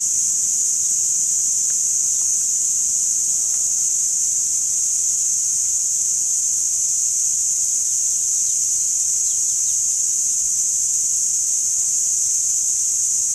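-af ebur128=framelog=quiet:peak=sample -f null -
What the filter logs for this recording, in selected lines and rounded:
Integrated loudness:
  I:         -16.0 LUFS
  Threshold: -26.0 LUFS
Loudness range:
  LRA:         0.4 LU
  Threshold: -36.0 LUFS
  LRA low:   -16.1 LUFS
  LRA high:  -15.7 LUFS
Sample peak:
  Peak:       -7.4 dBFS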